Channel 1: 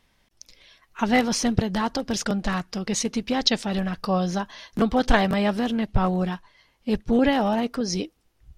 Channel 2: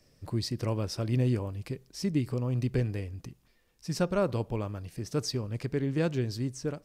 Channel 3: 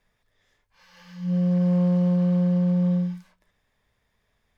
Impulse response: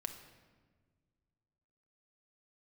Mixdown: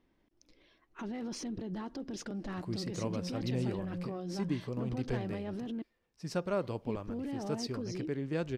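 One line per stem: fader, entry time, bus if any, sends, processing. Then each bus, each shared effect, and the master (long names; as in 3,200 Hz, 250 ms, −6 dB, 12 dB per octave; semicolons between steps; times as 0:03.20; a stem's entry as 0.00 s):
−9.5 dB, 0.00 s, muted 0:05.82–0:06.46, bus A, no send, soft clipping −14 dBFS, distortion −16 dB
−4.5 dB, 2.35 s, no bus, no send, low-shelf EQ 100 Hz −11.5 dB
−19.5 dB, 1.45 s, bus A, no send, no processing
bus A: 0.0 dB, parametric band 320 Hz +14.5 dB 0.84 octaves; brickwall limiter −32.5 dBFS, peak gain reduction 18 dB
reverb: not used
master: high-shelf EQ 8,000 Hz −8.5 dB; one half of a high-frequency compander decoder only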